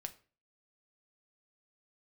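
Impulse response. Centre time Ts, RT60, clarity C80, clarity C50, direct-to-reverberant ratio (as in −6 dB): 5 ms, 0.40 s, 21.5 dB, 16.5 dB, 7.0 dB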